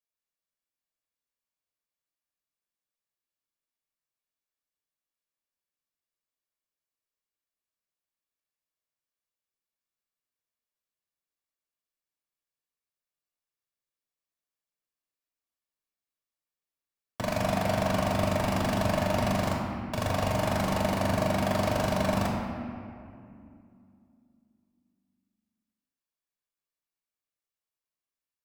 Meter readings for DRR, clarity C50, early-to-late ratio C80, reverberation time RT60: -1.5 dB, 1.0 dB, 2.5 dB, 2.5 s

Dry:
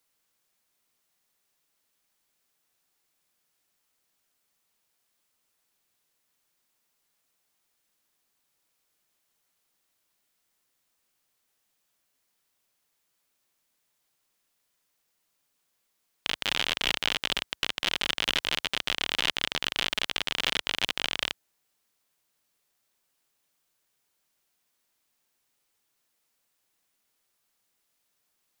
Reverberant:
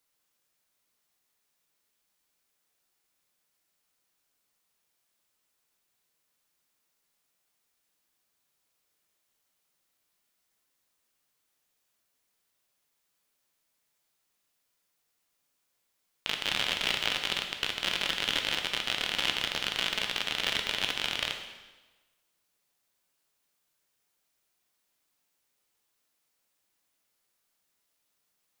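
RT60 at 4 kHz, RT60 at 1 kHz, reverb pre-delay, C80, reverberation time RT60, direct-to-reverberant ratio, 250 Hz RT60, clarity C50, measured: 1.1 s, 1.2 s, 6 ms, 8.0 dB, 1.2 s, 3.5 dB, 1.2 s, 6.5 dB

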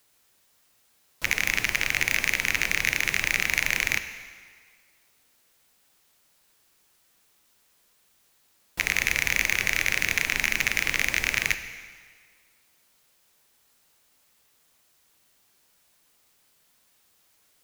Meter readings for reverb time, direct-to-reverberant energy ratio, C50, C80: 1.8 s, 9.0 dB, 10.5 dB, 11.5 dB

